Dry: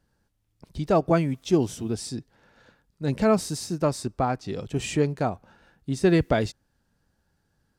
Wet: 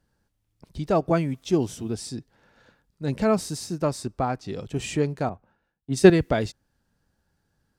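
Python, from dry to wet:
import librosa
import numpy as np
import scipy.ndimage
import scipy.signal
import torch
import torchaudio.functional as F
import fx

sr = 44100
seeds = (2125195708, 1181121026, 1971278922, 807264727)

y = fx.band_widen(x, sr, depth_pct=100, at=(5.29, 6.1))
y = F.gain(torch.from_numpy(y), -1.0).numpy()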